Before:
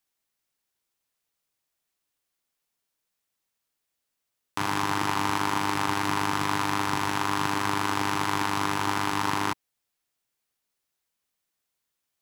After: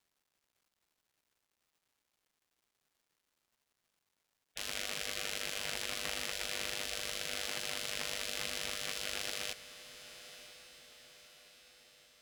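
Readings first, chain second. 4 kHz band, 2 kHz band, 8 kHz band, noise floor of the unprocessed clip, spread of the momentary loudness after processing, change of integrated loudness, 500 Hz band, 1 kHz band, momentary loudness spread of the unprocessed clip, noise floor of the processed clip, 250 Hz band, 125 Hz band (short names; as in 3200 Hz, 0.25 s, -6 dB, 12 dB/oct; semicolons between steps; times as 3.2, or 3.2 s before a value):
-3.5 dB, -10.5 dB, -3.5 dB, -82 dBFS, 17 LU, -10.5 dB, -10.5 dB, -24.0 dB, 2 LU, -85 dBFS, -24.0 dB, -22.5 dB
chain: spectral gate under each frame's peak -15 dB weak; diffused feedback echo 1.007 s, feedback 52%, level -14 dB; crackle 550/s -63 dBFS; gain -3.5 dB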